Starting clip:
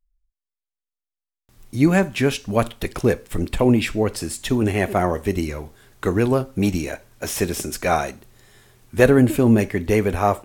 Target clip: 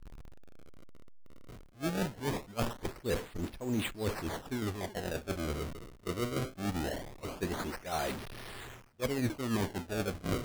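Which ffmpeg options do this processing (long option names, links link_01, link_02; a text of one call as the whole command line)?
ffmpeg -i in.wav -af "aeval=exprs='val(0)+0.5*0.0841*sgn(val(0))':channel_layout=same,areverse,acompressor=threshold=-24dB:ratio=6,areverse,acrusher=samples=30:mix=1:aa=0.000001:lfo=1:lforange=48:lforate=0.21,agate=range=-33dB:threshold=-18dB:ratio=3:detection=peak" out.wav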